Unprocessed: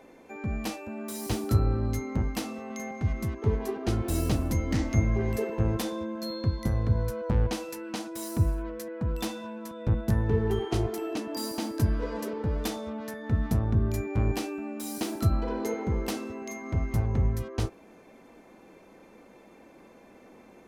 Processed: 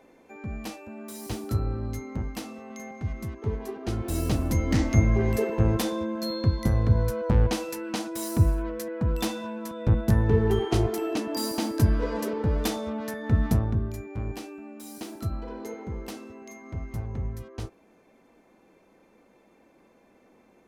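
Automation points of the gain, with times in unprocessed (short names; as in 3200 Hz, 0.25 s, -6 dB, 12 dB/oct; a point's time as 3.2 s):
3.76 s -3.5 dB
4.73 s +4 dB
13.51 s +4 dB
13.97 s -6.5 dB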